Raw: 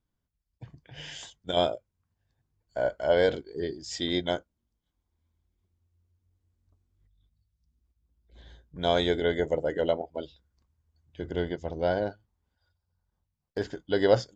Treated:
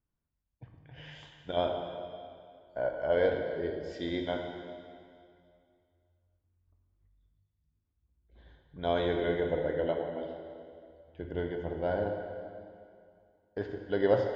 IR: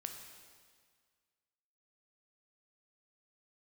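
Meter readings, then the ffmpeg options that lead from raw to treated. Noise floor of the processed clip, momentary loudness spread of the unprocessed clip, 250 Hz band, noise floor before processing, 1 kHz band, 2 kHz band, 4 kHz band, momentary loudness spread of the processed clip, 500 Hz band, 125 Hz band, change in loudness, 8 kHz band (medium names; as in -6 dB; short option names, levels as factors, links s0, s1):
-82 dBFS, 17 LU, -3.0 dB, -82 dBFS, -3.5 dB, -4.0 dB, -10.0 dB, 20 LU, -3.0 dB, -3.0 dB, -4.0 dB, no reading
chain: -filter_complex "[0:a]lowpass=2400[s0];[1:a]atrim=start_sample=2205,asetrate=33957,aresample=44100[s1];[s0][s1]afir=irnorm=-1:irlink=0,volume=0.794"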